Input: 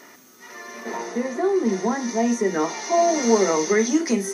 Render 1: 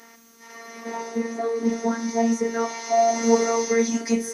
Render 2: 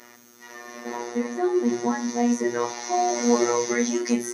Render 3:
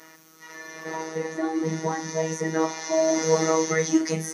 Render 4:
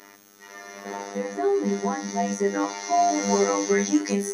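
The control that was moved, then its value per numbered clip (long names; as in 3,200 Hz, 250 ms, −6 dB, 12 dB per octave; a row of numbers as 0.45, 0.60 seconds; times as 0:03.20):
phases set to zero, frequency: 230, 120, 160, 100 Hertz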